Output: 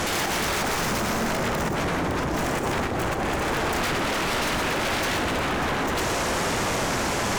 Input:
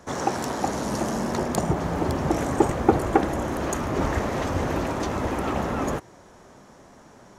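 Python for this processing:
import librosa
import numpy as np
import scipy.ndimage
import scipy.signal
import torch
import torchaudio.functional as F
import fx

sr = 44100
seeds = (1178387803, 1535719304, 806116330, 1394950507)

y = fx.tracing_dist(x, sr, depth_ms=0.34)
y = fx.highpass(y, sr, hz=210.0, slope=6, at=(3.83, 5.18))
y = fx.over_compress(y, sr, threshold_db=-38.0, ratio=-1.0)
y = fx.fold_sine(y, sr, drive_db=17, ceiling_db=-22.0)
y = fx.doubler(y, sr, ms=43.0, db=-14.0)
y = y + 10.0 ** (-7.0 / 20.0) * np.pad(y, (int(123 * sr / 1000.0), 0))[:len(y)]
y = y * librosa.db_to_amplitude(-1.0)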